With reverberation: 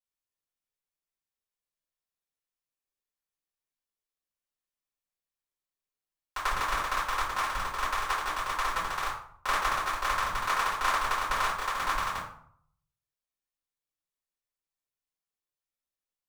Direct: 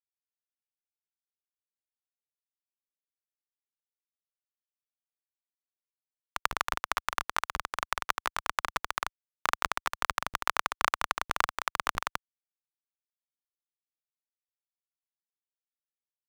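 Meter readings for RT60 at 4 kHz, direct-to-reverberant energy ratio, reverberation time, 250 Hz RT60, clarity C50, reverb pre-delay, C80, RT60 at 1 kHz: 0.40 s, -12.0 dB, 0.60 s, 0.70 s, 4.5 dB, 3 ms, 8.5 dB, 0.65 s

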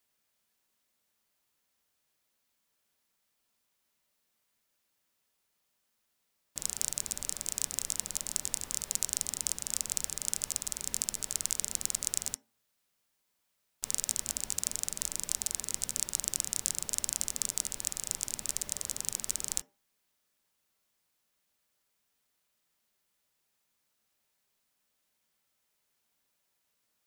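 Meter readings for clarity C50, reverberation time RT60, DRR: 21.0 dB, 0.45 s, 11.0 dB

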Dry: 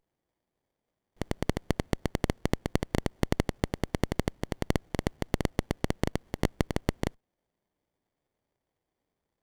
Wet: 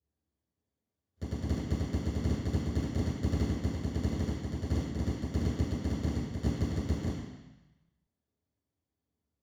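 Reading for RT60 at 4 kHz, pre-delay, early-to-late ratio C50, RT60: 1.1 s, 3 ms, -0.5 dB, 1.0 s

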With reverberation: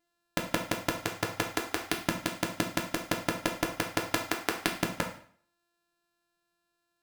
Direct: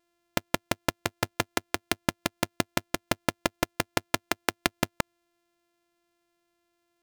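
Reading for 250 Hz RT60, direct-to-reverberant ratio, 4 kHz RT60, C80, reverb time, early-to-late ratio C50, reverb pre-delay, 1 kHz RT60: 0.50 s, 1.0 dB, 0.45 s, 12.0 dB, 0.50 s, 8.0 dB, 6 ms, 0.50 s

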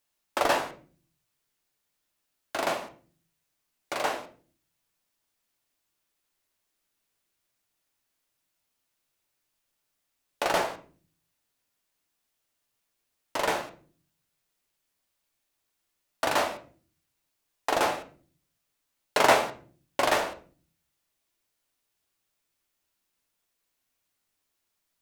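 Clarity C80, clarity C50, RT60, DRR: 18.5 dB, 13.0 dB, 0.45 s, 5.0 dB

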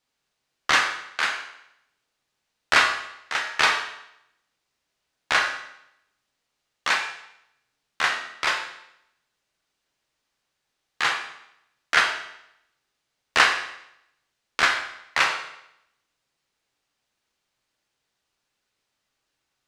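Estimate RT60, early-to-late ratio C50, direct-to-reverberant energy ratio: 0.80 s, 6.5 dB, 1.5 dB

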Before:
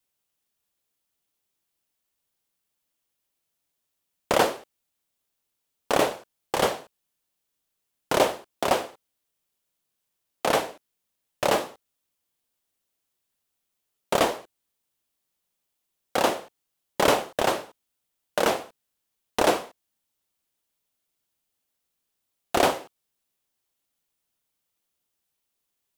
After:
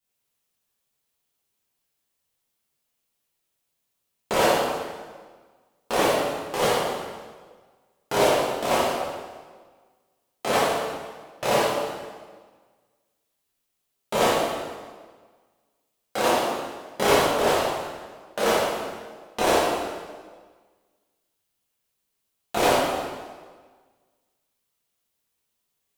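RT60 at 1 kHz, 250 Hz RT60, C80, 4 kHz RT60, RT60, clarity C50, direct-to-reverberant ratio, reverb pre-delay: 1.5 s, 1.6 s, 1.0 dB, 1.3 s, 1.5 s, -1.5 dB, -9.0 dB, 8 ms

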